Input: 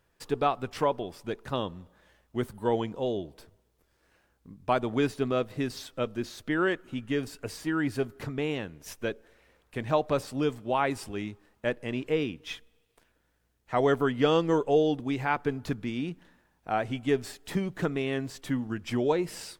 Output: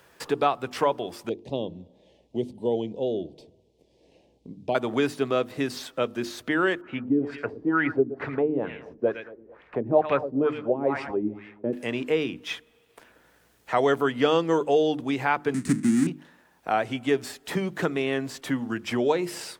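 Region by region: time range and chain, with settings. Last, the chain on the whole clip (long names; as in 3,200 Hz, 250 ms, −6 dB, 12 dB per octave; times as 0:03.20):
0:01.29–0:04.75: Butterworth band-reject 1,400 Hz, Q 0.57 + head-to-tape spacing loss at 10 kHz 22 dB
0:06.81–0:11.73: repeating echo 114 ms, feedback 44%, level −14 dB + auto-filter low-pass sine 2.2 Hz 290–2,400 Hz
0:15.54–0:16.07: each half-wave held at its own peak + drawn EQ curve 110 Hz 0 dB, 210 Hz +12 dB, 330 Hz +4 dB, 530 Hz −20 dB, 820 Hz −20 dB, 1,900 Hz −1 dB, 3,100 Hz −13 dB, 5,300 Hz −6 dB, 8,800 Hz +7 dB, 13,000 Hz −16 dB
whole clip: high-pass filter 250 Hz 6 dB per octave; mains-hum notches 50/100/150/200/250/300/350 Hz; multiband upward and downward compressor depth 40%; level +4.5 dB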